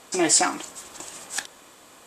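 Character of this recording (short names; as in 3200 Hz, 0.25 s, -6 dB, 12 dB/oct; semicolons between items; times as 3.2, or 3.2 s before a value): noise floor -51 dBFS; spectral tilt -1.0 dB/oct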